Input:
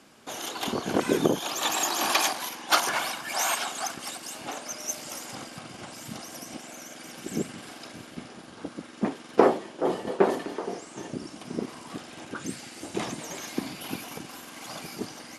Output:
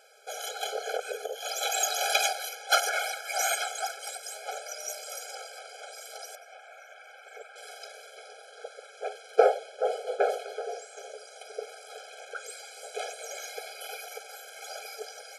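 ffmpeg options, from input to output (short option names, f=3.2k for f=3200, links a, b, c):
-filter_complex "[0:a]asettb=1/sr,asplit=3[a][b][c];[a]atrim=end=0.964[d];[b]atrim=start=0.96:end=1.48,asetpts=PTS-STARTPTS,afade=t=in:d=0.004:c=qsin,afade=t=out:st=0.516:d=0.004:c=qsin,acompressor=threshold=-26dB:ratio=10[e];[c]atrim=start=1.476[f];[d][e]acrossfade=d=0.004:c1=hsin:c2=qsin[g];[g][f]acrossfade=d=0.004:c1=qsin:c2=hsin,asettb=1/sr,asplit=3[h][i][j];[h]atrim=end=6.354[k];[i]atrim=start=6.35:end=7.56,asetpts=PTS-STARTPTS,afade=t=in:d=0.004:c=qsin,afade=t=out:st=1.206:d=0.004:c=qsin,acrossover=split=600 2700:gain=0.0794 1 0.112[l][m][n];[l][m][n]amix=inputs=3:normalize=0[o];[j]atrim=start=7.556[p];[k][o]acrossfade=d=0.004:c1=hsin:c2=qsin[q];[q][p]acrossfade=d=0.004:c1=qsin:c2=hsin,afftfilt=real='re*eq(mod(floor(b*sr/1024/430),2),1)':imag='im*eq(mod(floor(b*sr/1024/430),2),1)':win_size=1024:overlap=0.75,volume=1.5dB"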